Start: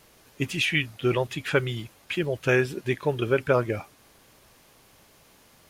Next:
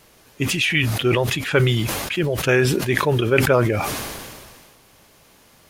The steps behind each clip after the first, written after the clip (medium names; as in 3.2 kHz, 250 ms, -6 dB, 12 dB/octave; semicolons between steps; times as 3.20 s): decay stretcher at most 31 dB/s; trim +4 dB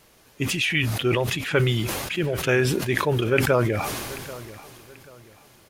feedback delay 786 ms, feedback 31%, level -17.5 dB; trim -3.5 dB